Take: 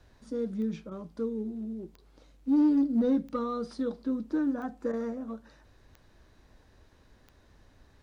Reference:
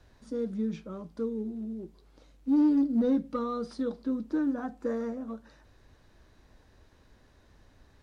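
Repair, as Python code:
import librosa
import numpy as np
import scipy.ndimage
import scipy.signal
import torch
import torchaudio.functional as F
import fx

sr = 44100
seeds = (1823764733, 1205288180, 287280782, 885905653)

y = fx.fix_declick_ar(x, sr, threshold=10.0)
y = fx.fix_interpolate(y, sr, at_s=(0.9, 1.97, 4.92), length_ms=11.0)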